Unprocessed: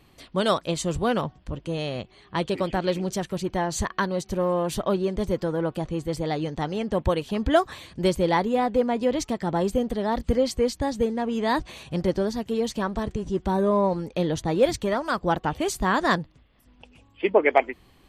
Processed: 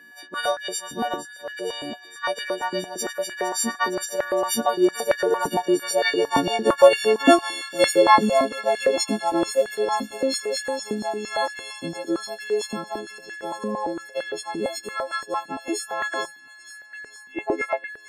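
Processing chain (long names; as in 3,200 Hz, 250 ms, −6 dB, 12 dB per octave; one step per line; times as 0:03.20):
every partial snapped to a pitch grid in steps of 4 semitones
source passing by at 0:06.79, 15 m/s, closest 20 metres
in parallel at +1 dB: downward compressor, threshold −40 dBFS, peak gain reduction 23.5 dB
on the sum: steady tone 1,700 Hz −48 dBFS
on a send: delay with a high-pass on its return 461 ms, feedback 75%, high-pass 3,700 Hz, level −12 dB
on the sum: high-pass on a step sequencer 8.8 Hz 250–1,700 Hz
level +1.5 dB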